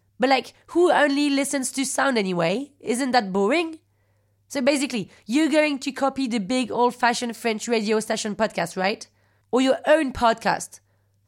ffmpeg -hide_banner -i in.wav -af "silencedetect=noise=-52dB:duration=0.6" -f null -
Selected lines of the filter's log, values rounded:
silence_start: 3.79
silence_end: 4.50 | silence_duration: 0.71